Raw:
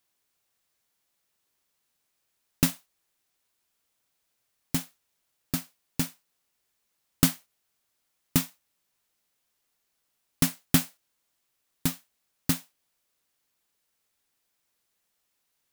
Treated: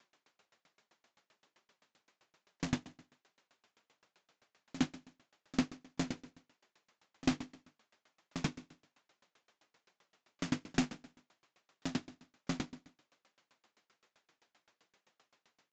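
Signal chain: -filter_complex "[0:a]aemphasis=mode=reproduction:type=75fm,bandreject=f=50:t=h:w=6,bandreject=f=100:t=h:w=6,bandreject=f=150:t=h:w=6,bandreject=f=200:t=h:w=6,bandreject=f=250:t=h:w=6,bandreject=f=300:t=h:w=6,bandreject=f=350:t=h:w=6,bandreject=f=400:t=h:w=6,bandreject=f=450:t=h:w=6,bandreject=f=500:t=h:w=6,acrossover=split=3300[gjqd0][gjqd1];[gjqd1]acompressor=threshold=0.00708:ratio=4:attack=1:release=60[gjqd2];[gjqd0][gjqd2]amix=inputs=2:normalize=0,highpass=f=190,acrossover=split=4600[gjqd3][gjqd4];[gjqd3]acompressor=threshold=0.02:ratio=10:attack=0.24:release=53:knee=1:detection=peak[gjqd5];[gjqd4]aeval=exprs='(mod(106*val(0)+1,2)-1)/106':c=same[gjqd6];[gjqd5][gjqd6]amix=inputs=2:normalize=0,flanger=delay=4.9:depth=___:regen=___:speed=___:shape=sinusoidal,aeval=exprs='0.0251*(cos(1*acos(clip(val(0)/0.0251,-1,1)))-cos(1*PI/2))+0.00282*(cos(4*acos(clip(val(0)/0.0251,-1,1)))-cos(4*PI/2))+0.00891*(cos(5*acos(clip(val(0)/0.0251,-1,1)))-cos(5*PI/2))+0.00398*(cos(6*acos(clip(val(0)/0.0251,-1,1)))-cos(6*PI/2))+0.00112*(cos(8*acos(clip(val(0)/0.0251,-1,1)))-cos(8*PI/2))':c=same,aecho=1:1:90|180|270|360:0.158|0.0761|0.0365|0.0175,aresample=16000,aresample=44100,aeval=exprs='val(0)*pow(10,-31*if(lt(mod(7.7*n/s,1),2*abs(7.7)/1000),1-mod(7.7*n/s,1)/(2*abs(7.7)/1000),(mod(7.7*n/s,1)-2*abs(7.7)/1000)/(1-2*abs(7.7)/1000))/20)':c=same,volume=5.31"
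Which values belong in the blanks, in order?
5, -38, 1.2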